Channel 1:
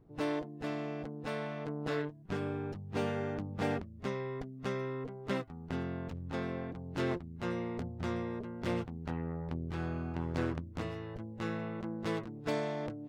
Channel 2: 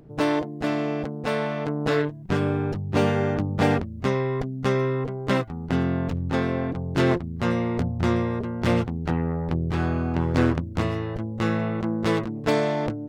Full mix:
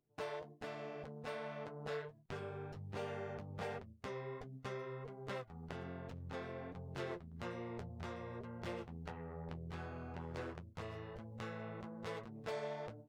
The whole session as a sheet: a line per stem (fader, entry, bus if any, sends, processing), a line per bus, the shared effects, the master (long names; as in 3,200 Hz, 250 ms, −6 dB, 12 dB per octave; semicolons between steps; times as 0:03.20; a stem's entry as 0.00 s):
−2.0 dB, 0.00 s, no send, four-pole ladder high-pass 290 Hz, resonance 40%
−13.5 dB, 0.00 s, no send, downward compressor 4 to 1, threshold −27 dBFS, peak gain reduction 10.5 dB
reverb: not used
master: noise gate with hold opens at −40 dBFS; flanger 1.3 Hz, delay 7.5 ms, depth 6.6 ms, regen −41%; one half of a high-frequency compander encoder only